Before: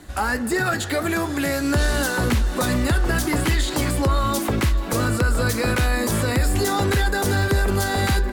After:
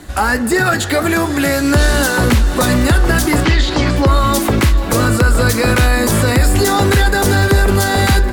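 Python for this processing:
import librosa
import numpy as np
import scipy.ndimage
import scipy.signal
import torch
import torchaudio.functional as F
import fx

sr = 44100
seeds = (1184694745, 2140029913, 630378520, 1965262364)

y = fx.lowpass(x, sr, hz=5800.0, slope=24, at=(3.4, 4.07))
y = y + 10.0 ** (-18.0 / 20.0) * np.pad(y, (int(776 * sr / 1000.0), 0))[:len(y)]
y = y * librosa.db_to_amplitude(8.0)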